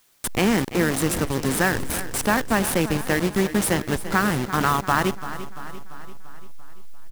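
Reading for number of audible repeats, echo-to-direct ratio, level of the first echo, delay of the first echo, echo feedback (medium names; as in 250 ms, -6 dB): 5, -12.0 dB, -13.5 dB, 342 ms, 57%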